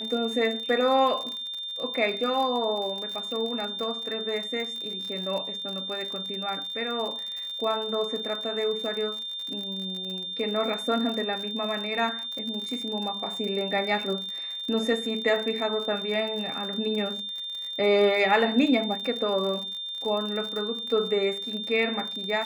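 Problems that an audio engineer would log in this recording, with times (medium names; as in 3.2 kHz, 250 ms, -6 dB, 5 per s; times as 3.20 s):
crackle 54 per s -32 dBFS
whine 3.6 kHz -32 dBFS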